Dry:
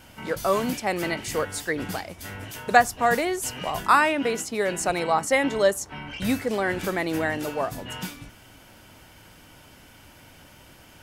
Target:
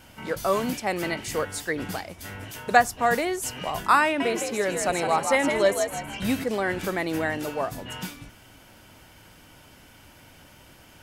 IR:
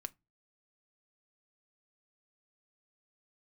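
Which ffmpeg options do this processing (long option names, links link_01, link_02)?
-filter_complex "[0:a]asettb=1/sr,asplit=3[link_01][link_02][link_03];[link_01]atrim=end=4.044[link_04];[link_02]atrim=start=4.04:end=6.44,asetpts=PTS-STARTPTS,afade=type=in:duration=0.004:curve=qsin,afade=type=out:start_time=2.396:duration=0.004:curve=qsin,asplit=5[link_05][link_06][link_07][link_08][link_09];[link_06]adelay=160,afreqshift=68,volume=-6dB[link_10];[link_07]adelay=320,afreqshift=136,volume=-15.1dB[link_11];[link_08]adelay=480,afreqshift=204,volume=-24.2dB[link_12];[link_09]adelay=640,afreqshift=272,volume=-33.4dB[link_13];[link_05][link_10][link_11][link_12][link_13]amix=inputs=5:normalize=0,atrim=end_sample=105840[link_14];[link_03]atrim=start=6.436[link_15];[link_04][link_14]acrossfade=duration=0.004:curve1=hsin:curve2=qsin[link_16];[link_16][link_15]acrossfade=duration=0.004:curve1=qsin:curve2=hsin,volume=-1dB"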